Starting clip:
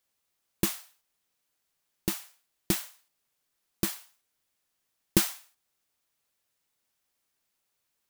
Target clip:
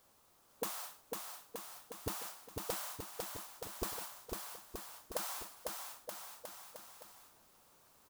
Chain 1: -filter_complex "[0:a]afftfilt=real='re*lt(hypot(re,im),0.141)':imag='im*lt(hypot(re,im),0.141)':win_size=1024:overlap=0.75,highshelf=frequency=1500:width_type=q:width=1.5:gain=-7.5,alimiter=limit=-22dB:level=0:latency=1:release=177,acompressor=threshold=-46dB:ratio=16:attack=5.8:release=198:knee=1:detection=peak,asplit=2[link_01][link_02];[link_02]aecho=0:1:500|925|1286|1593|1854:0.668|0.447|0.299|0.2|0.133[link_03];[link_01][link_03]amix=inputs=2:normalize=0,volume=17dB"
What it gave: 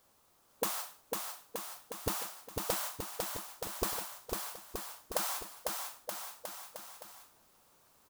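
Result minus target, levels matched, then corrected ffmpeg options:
downward compressor: peak gain reduction −6 dB
-filter_complex "[0:a]afftfilt=real='re*lt(hypot(re,im),0.141)':imag='im*lt(hypot(re,im),0.141)':win_size=1024:overlap=0.75,highshelf=frequency=1500:width_type=q:width=1.5:gain=-7.5,alimiter=limit=-22dB:level=0:latency=1:release=177,acompressor=threshold=-52.5dB:ratio=16:attack=5.8:release=198:knee=1:detection=peak,asplit=2[link_01][link_02];[link_02]aecho=0:1:500|925|1286|1593|1854:0.668|0.447|0.299|0.2|0.133[link_03];[link_01][link_03]amix=inputs=2:normalize=0,volume=17dB"

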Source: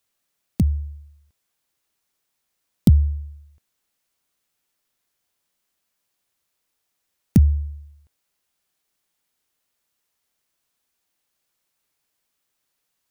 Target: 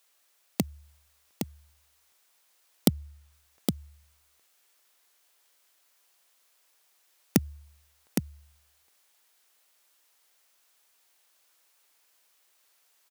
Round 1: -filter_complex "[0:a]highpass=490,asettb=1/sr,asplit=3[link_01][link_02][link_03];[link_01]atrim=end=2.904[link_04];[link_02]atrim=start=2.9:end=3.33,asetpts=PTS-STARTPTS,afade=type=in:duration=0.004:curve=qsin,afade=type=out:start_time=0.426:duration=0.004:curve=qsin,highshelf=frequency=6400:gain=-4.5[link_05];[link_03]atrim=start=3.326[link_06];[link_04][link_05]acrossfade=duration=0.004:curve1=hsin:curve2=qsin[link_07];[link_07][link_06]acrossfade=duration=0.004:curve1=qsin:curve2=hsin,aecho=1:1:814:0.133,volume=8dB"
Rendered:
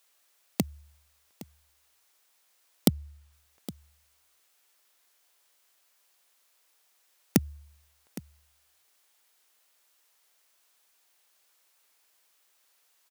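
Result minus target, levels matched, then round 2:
echo-to-direct −12 dB
-filter_complex "[0:a]highpass=490,asettb=1/sr,asplit=3[link_01][link_02][link_03];[link_01]atrim=end=2.904[link_04];[link_02]atrim=start=2.9:end=3.33,asetpts=PTS-STARTPTS,afade=type=in:duration=0.004:curve=qsin,afade=type=out:start_time=0.426:duration=0.004:curve=qsin,highshelf=frequency=6400:gain=-4.5[link_05];[link_03]atrim=start=3.326[link_06];[link_04][link_05]acrossfade=duration=0.004:curve1=hsin:curve2=qsin[link_07];[link_07][link_06]acrossfade=duration=0.004:curve1=qsin:curve2=hsin,aecho=1:1:814:0.531,volume=8dB"

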